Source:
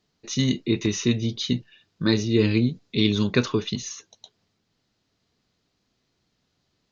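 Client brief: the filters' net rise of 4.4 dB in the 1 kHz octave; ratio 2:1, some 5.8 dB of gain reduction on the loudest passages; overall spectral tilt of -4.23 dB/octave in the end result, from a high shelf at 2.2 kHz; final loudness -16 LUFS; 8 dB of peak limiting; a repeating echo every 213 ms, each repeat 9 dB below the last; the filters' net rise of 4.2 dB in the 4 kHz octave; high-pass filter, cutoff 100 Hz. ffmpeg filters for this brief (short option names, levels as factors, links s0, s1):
-af "highpass=100,equalizer=f=1000:t=o:g=5.5,highshelf=f=2200:g=-3,equalizer=f=4000:t=o:g=7,acompressor=threshold=0.0562:ratio=2,alimiter=limit=0.119:level=0:latency=1,aecho=1:1:213|426|639|852:0.355|0.124|0.0435|0.0152,volume=5.01"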